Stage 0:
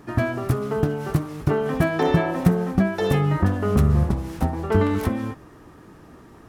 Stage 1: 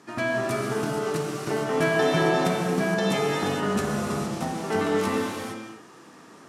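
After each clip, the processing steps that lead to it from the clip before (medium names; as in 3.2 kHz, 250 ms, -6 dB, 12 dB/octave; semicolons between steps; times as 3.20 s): Chebyshev band-pass 180–7400 Hz, order 2; tilt EQ +2.5 dB/octave; gated-style reverb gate 490 ms flat, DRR -3.5 dB; trim -3 dB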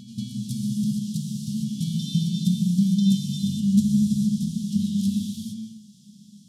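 Chebyshev band-stop 210–3300 Hz, order 5; small resonant body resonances 220/360/1300 Hz, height 14 dB, ringing for 60 ms; reverse echo 199 ms -12 dB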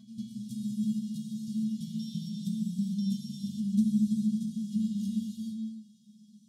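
feedback comb 220 Hz, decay 0.19 s, harmonics odd, mix 90%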